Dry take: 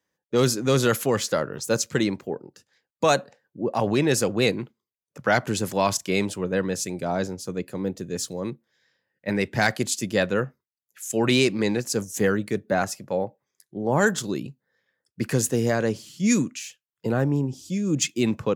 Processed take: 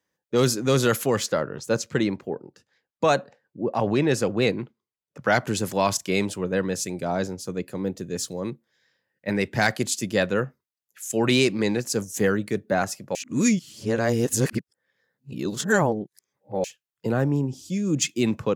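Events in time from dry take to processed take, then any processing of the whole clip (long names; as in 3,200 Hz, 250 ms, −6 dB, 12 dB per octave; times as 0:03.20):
0:01.26–0:05.22: low-pass filter 3,400 Hz 6 dB per octave
0:13.15–0:16.64: reverse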